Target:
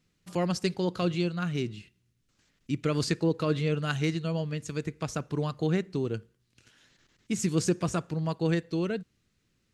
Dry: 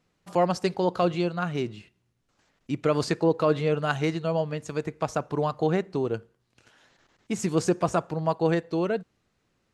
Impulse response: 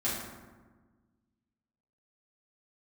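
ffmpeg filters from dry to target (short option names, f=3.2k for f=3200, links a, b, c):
-af "equalizer=f=770:w=0.76:g=-13.5,volume=2dB"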